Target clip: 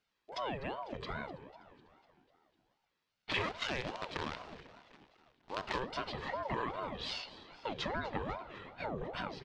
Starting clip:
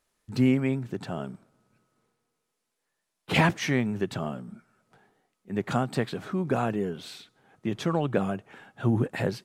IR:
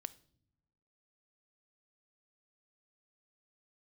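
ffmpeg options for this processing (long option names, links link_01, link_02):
-filter_complex "[0:a]bandreject=frequency=60:width_type=h:width=6,bandreject=frequency=120:width_type=h:width=6,bandreject=frequency=180:width_type=h:width=6,bandreject=frequency=240:width_type=h:width=6,bandreject=frequency=300:width_type=h:width=6,bandreject=frequency=360:width_type=h:width=6,bandreject=frequency=420:width_type=h:width=6,aecho=1:1:1.4:0.98,asettb=1/sr,asplit=3[link_01][link_02][link_03];[link_01]atrim=end=3.314[link_04];[link_02]atrim=start=3.31:end=5.8,asetpts=PTS-STARTPTS,afade=type=in:duration=0.004:curve=qsin,afade=type=out:start_time=2.486:duration=0.004:curve=qsin,acrusher=bits=5:dc=4:mix=0:aa=0.000001[link_05];[link_03]atrim=start=5.796[link_06];[link_04][link_05]acrossfade=duration=0.004:curve1=hsin:curve2=qsin[link_07];[link_07][link_06]acrossfade=duration=0.004:curve1=qsin:curve2=hsin,highpass=120,dynaudnorm=framelen=370:gausssize=9:maxgain=9dB,lowpass=frequency=3900:width=0.5412,lowpass=frequency=3900:width=1.3066[link_08];[1:a]atrim=start_sample=2205[link_09];[link_08][link_09]afir=irnorm=-1:irlink=0,acompressor=threshold=-33dB:ratio=3,aemphasis=mode=production:type=75fm,asplit=7[link_10][link_11][link_12][link_13][link_14][link_15][link_16];[link_11]adelay=249,afreqshift=-41,volume=-17dB[link_17];[link_12]adelay=498,afreqshift=-82,volume=-21dB[link_18];[link_13]adelay=747,afreqshift=-123,volume=-25dB[link_19];[link_14]adelay=996,afreqshift=-164,volume=-29dB[link_20];[link_15]adelay=1245,afreqshift=-205,volume=-33.1dB[link_21];[link_16]adelay=1494,afreqshift=-246,volume=-37.1dB[link_22];[link_10][link_17][link_18][link_19][link_20][link_21][link_22]amix=inputs=7:normalize=0,aeval=exprs='val(0)*sin(2*PI*560*n/s+560*0.55/2.5*sin(2*PI*2.5*n/s))':channel_layout=same,volume=-1.5dB"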